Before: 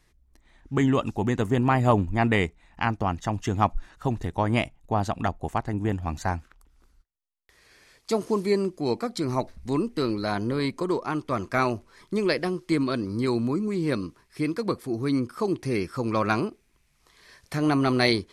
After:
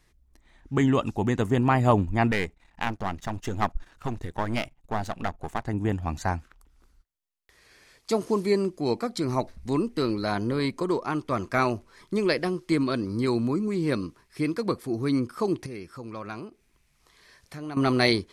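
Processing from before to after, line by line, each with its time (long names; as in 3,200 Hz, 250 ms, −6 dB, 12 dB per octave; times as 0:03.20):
0:02.31–0:05.65: gain on one half-wave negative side −12 dB
0:15.66–0:17.77: downward compressor 1.5 to 1, threshold −56 dBFS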